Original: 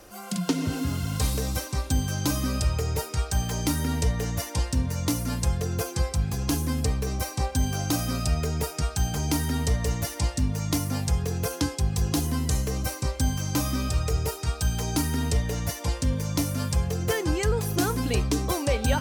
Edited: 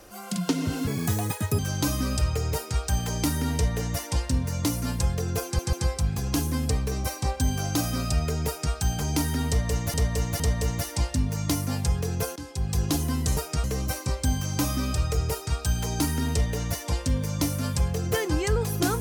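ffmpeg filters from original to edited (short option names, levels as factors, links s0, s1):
-filter_complex "[0:a]asplit=10[s0][s1][s2][s3][s4][s5][s6][s7][s8][s9];[s0]atrim=end=0.874[s10];[s1]atrim=start=0.87:end=2.02,asetpts=PTS-STARTPTS,asetrate=70560,aresample=44100[s11];[s2]atrim=start=2.016:end=6.022[s12];[s3]atrim=start=5.878:end=6.022[s13];[s4]atrim=start=5.878:end=10.092[s14];[s5]atrim=start=9.628:end=10.092[s15];[s6]atrim=start=9.628:end=11.59,asetpts=PTS-STARTPTS,afade=t=out:st=1.958:d=0.004:c=hsin:silence=0.141254[s16];[s7]atrim=start=11.59:end=12.602,asetpts=PTS-STARTPTS,afade=t=in:d=0.4:silence=0.141254[s17];[s8]atrim=start=8.618:end=8.892[s18];[s9]atrim=start=12.598[s19];[s10][s11]acrossfade=d=0.004:c1=hsin:c2=hsin[s20];[s20][s12]acrossfade=d=0.004:c1=hsin:c2=hsin[s21];[s21][s13]acrossfade=d=0.004:c1=hsin:c2=hsin[s22];[s22][s14]acrossfade=d=0.004:c1=hsin:c2=hsin[s23];[s23][s15]acrossfade=d=0.004:c1=hsin:c2=hsin[s24];[s16][s17]concat=n=2:v=0:a=1[s25];[s24][s25]acrossfade=d=0.004:c1=hsin:c2=hsin[s26];[s26][s18]acrossfade=d=0.004:c1=hsin:c2=hsin[s27];[s27][s19]acrossfade=d=0.004:c1=hsin:c2=hsin"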